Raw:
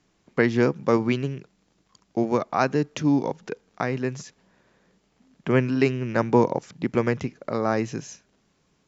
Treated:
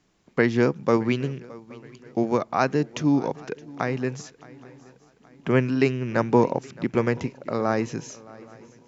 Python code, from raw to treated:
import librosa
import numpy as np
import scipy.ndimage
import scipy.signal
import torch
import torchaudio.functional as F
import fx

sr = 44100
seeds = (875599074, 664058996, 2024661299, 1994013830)

y = fx.echo_swing(x, sr, ms=824, ratio=3, feedback_pct=41, wet_db=-21.5)